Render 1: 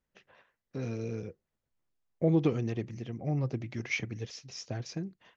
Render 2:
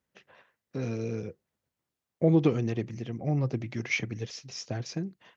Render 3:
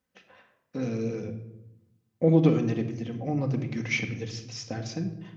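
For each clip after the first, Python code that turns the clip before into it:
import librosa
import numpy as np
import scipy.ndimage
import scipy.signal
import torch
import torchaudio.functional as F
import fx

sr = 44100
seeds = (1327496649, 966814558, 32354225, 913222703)

y1 = scipy.signal.sosfilt(scipy.signal.butter(2, 80.0, 'highpass', fs=sr, output='sos'), x)
y1 = y1 * 10.0 ** (3.5 / 20.0)
y2 = fx.room_shoebox(y1, sr, seeds[0], volume_m3=3000.0, walls='furnished', distance_m=2.0)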